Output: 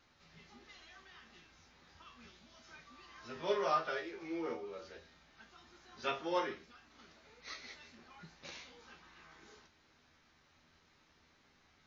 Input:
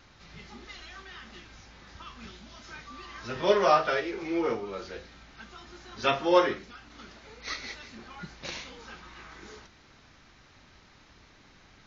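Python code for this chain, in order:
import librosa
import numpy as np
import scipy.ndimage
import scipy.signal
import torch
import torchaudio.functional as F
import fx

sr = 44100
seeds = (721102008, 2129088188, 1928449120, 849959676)

y = fx.low_shelf(x, sr, hz=120.0, db=-6.5)
y = fx.comb_fb(y, sr, f0_hz=81.0, decay_s=0.21, harmonics='all', damping=0.0, mix_pct=80)
y = F.gain(torch.from_numpy(y), -5.5).numpy()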